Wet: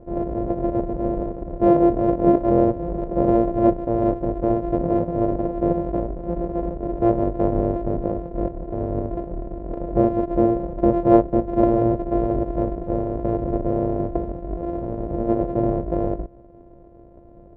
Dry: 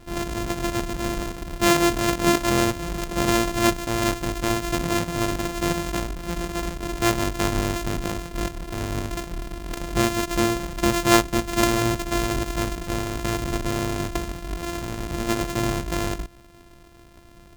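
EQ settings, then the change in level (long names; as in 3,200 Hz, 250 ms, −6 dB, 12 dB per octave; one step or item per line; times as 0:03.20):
low-pass with resonance 550 Hz, resonance Q 3.4
+1.0 dB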